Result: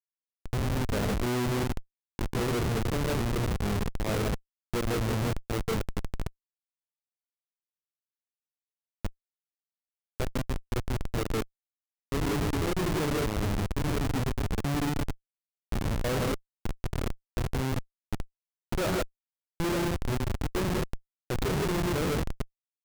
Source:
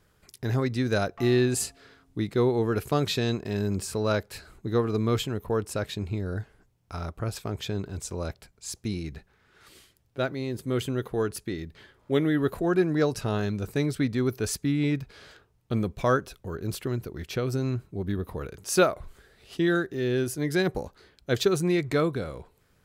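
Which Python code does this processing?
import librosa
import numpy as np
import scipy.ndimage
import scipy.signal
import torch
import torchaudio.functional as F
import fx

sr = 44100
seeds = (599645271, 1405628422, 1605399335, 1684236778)

p1 = fx.wiener(x, sr, points=41)
p2 = p1 + fx.echo_feedback(p1, sr, ms=940, feedback_pct=17, wet_db=-11.5, dry=0)
p3 = fx.rev_gated(p2, sr, seeds[0], gate_ms=190, shape='rising', drr_db=0.5)
p4 = fx.dynamic_eq(p3, sr, hz=550.0, q=2.4, threshold_db=-36.0, ratio=4.0, max_db=3)
p5 = fx.schmitt(p4, sr, flips_db=-21.5)
y = p5 * librosa.db_to_amplitude(-2.5)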